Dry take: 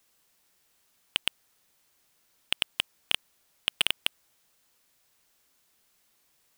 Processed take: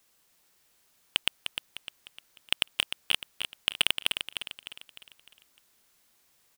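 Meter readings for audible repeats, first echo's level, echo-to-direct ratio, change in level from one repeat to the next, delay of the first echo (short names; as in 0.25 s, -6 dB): 4, -8.0 dB, -7.0 dB, -7.0 dB, 0.303 s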